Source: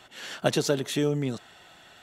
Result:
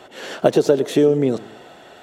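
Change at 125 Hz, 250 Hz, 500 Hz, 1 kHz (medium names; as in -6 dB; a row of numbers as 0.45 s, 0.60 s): +3.5 dB, +9.5 dB, +12.0 dB, +8.0 dB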